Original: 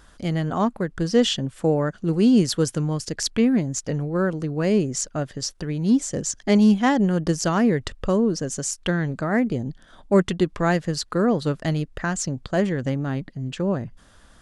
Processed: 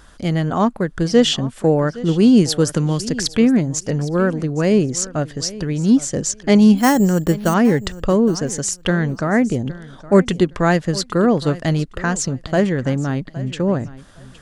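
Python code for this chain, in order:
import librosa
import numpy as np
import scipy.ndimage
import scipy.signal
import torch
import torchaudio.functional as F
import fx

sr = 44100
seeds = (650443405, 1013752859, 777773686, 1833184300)

y = fx.resample_bad(x, sr, factor=6, down='filtered', up='hold', at=(6.77, 7.54))
y = fx.echo_feedback(y, sr, ms=815, feedback_pct=19, wet_db=-18.0)
y = fx.band_squash(y, sr, depth_pct=70, at=(2.69, 3.26))
y = F.gain(torch.from_numpy(y), 5.0).numpy()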